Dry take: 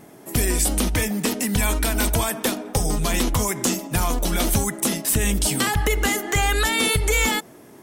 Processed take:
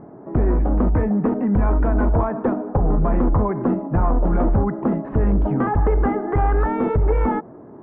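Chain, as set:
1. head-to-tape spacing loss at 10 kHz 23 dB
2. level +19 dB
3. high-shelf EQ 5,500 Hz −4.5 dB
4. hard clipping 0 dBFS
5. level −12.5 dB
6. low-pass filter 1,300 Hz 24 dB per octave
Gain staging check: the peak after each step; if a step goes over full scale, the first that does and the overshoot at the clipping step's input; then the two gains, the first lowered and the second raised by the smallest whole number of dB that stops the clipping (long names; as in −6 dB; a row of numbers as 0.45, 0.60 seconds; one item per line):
−11.0, +8.0, +8.0, 0.0, −12.5, −11.0 dBFS
step 2, 8.0 dB
step 2 +11 dB, step 5 −4.5 dB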